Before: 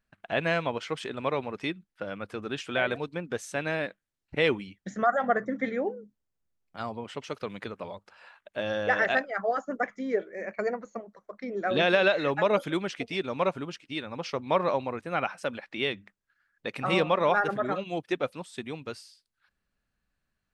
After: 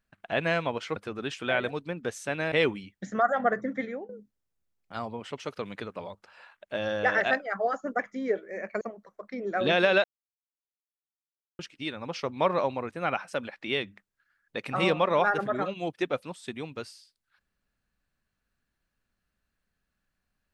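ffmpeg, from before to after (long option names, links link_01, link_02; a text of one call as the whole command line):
ffmpeg -i in.wav -filter_complex "[0:a]asplit=7[link_01][link_02][link_03][link_04][link_05][link_06][link_07];[link_01]atrim=end=0.962[link_08];[link_02]atrim=start=2.228:end=3.792[link_09];[link_03]atrim=start=4.358:end=5.93,asetpts=PTS-STARTPTS,afade=type=out:start_time=1.042:duration=0.53:curve=qsin:silence=0.11885[link_10];[link_04]atrim=start=5.93:end=10.652,asetpts=PTS-STARTPTS,afade=type=in:duration=0.004:curve=hsin:silence=0.11885[link_11];[link_05]atrim=start=10.908:end=12.14,asetpts=PTS-STARTPTS,afade=type=out:start_time=1.228:duration=0.004:curve=hsin[link_12];[link_06]atrim=start=12.14:end=13.69,asetpts=PTS-STARTPTS,volume=0[link_13];[link_07]atrim=start=13.69,asetpts=PTS-STARTPTS,afade=type=in:duration=0.004:curve=hsin[link_14];[link_08][link_09]acrossfade=duration=0.004:curve1=hsin:curve2=hsin[link_15];[link_10][link_11]concat=n=2:v=0:a=1[link_16];[link_15][link_16]acrossfade=duration=0.004:curve1=hsin:curve2=hsin[link_17];[link_12][link_13][link_14]concat=n=3:v=0:a=1[link_18];[link_17][link_18]acrossfade=duration=0.004:curve1=hsin:curve2=hsin" out.wav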